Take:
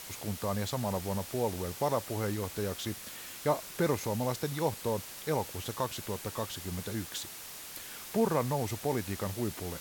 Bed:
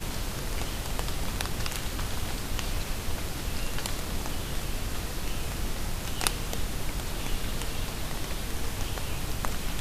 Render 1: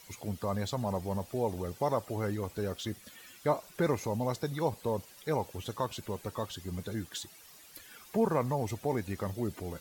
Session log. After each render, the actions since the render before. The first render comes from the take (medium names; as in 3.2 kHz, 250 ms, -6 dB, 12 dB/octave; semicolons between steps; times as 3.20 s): noise reduction 13 dB, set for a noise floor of -45 dBFS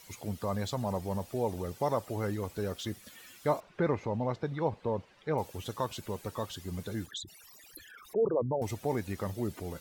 3.60–5.38 s: low-pass 2.6 kHz; 7.06–8.62 s: resonances exaggerated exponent 3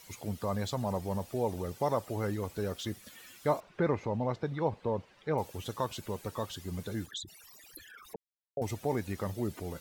8.16–8.57 s: mute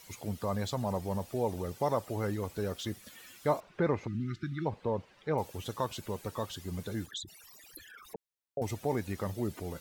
4.07–4.66 s: spectral selection erased 370–1200 Hz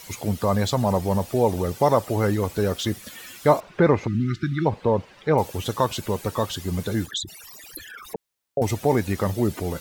trim +11.5 dB